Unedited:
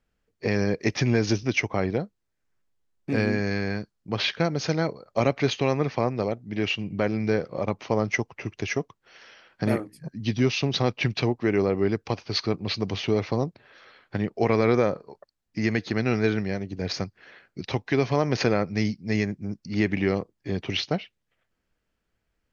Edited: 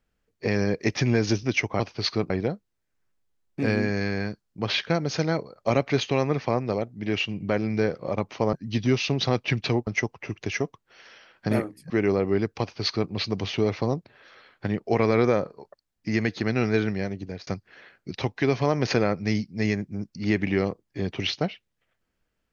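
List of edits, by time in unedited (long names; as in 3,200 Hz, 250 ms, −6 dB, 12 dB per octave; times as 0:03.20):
0:10.06–0:11.40: move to 0:08.03
0:12.11–0:12.61: duplicate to 0:01.80
0:16.70–0:16.97: fade out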